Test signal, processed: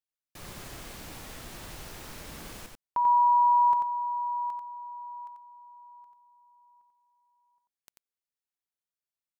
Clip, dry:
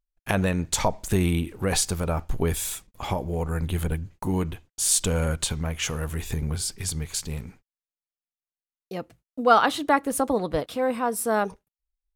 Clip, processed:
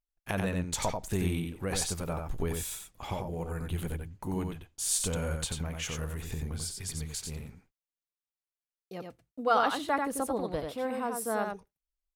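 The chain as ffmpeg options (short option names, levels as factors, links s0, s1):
-af "aecho=1:1:90:0.596,volume=0.376"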